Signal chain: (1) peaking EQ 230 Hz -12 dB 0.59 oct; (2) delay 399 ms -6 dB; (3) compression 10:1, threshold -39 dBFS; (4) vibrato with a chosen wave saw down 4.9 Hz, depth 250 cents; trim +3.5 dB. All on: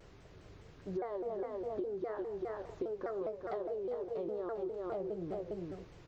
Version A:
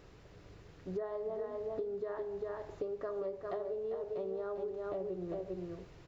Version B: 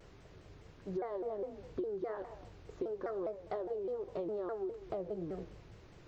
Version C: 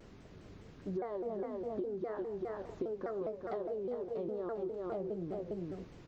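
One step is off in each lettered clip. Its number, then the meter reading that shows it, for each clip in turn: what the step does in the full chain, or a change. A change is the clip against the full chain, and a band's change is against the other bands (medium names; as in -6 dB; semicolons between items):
4, 250 Hz band -3.0 dB; 2, momentary loudness spread change +8 LU; 1, 125 Hz band +3.0 dB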